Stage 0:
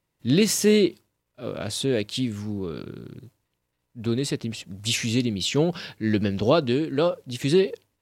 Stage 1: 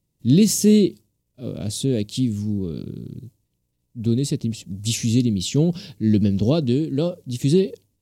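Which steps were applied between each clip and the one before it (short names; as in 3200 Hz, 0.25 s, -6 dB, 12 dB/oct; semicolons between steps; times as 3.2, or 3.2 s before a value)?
EQ curve 210 Hz 0 dB, 1500 Hz -22 dB, 3100 Hz -11 dB, 6500 Hz -4 dB; gain +7 dB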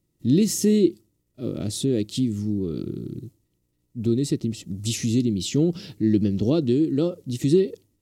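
compressor 1.5:1, threshold -29 dBFS, peak gain reduction 7 dB; small resonant body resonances 330/1300/1900 Hz, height 9 dB, ringing for 30 ms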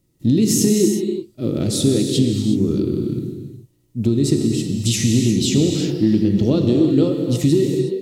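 compressor, threshold -20 dBFS, peak gain reduction 7.5 dB; non-linear reverb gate 0.39 s flat, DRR 2.5 dB; gain +7 dB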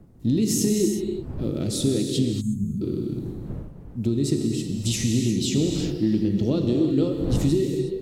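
wind noise 170 Hz -31 dBFS; spectral gain 2.41–2.82, 250–6300 Hz -24 dB; gain -6 dB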